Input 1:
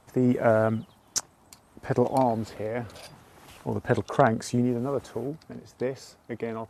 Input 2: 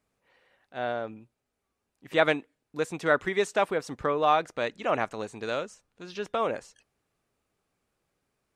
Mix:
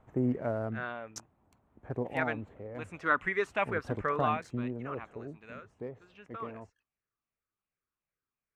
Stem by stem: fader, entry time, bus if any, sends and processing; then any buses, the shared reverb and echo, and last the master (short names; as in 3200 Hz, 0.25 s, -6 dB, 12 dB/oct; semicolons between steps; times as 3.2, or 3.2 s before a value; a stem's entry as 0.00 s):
-5.5 dB, 0.00 s, no send, Wiener smoothing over 9 samples; auto duck -8 dB, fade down 0.50 s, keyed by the second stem
0.76 s -10.5 dB -> 1.5 s -18 dB -> 2.76 s -18 dB -> 3.11 s -10.5 dB -> 4.18 s -10.5 dB -> 4.51 s -23 dB, 0.00 s, no send, moving spectral ripple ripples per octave 0.54, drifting -2.7 Hz, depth 7 dB; band shelf 1700 Hz +10.5 dB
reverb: off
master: tilt -1.5 dB/oct